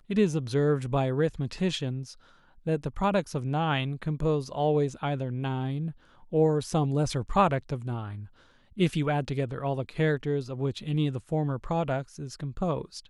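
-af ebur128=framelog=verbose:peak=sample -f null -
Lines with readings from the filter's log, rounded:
Integrated loudness:
  I:         -28.7 LUFS
  Threshold: -39.1 LUFS
Loudness range:
  LRA:         2.1 LU
  Threshold: -49.1 LUFS
  LRA low:   -30.2 LUFS
  LRA high:  -28.0 LUFS
Sample peak:
  Peak:      -10.4 dBFS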